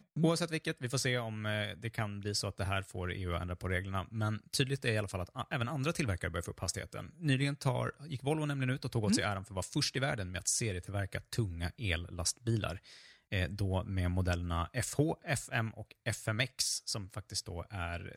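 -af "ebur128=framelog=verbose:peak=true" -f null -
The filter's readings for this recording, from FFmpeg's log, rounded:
Integrated loudness:
  I:         -35.4 LUFS
  Threshold: -45.5 LUFS
Loudness range:
  LRA:         2.1 LU
  Threshold: -55.5 LUFS
  LRA low:   -36.5 LUFS
  LRA high:  -34.3 LUFS
True peak:
  Peak:      -15.7 dBFS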